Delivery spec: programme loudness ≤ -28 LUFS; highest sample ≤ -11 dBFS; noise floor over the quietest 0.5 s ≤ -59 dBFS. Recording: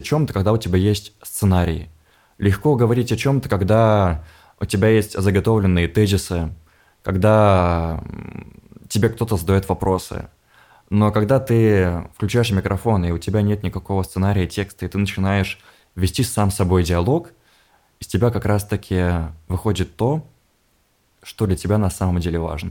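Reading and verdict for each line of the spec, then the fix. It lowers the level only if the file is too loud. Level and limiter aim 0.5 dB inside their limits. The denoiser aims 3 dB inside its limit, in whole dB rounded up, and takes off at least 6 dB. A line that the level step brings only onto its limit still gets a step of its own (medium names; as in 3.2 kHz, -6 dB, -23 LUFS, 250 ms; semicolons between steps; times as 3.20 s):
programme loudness -19.5 LUFS: fail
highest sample -4.0 dBFS: fail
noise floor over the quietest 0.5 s -62 dBFS: pass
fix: trim -9 dB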